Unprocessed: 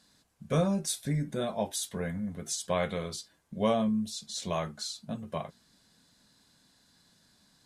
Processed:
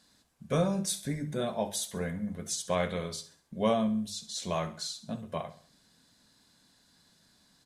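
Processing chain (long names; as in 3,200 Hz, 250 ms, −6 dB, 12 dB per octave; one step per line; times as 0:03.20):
mains-hum notches 50/100/150/200 Hz
repeating echo 67 ms, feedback 40%, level −14.5 dB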